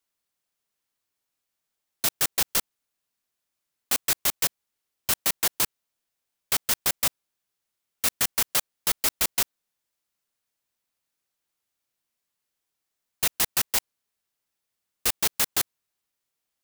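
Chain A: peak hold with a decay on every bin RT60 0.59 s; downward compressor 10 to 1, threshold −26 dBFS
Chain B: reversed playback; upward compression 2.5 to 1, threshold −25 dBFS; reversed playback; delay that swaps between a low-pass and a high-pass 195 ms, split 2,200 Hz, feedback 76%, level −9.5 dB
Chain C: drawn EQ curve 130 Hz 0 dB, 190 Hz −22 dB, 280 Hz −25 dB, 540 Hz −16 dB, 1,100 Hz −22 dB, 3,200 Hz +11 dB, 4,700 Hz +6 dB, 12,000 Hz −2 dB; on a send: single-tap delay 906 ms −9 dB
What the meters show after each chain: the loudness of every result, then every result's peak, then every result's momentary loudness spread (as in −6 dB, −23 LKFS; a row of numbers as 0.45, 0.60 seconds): −29.5, −25.5, −24.5 LKFS; −11.0, −9.0, −6.0 dBFS; 12, 18, 13 LU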